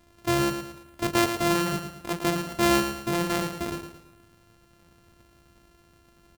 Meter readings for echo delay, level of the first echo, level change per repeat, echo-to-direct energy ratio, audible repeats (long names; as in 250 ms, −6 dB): 111 ms, −8.0 dB, −8.0 dB, −7.5 dB, 4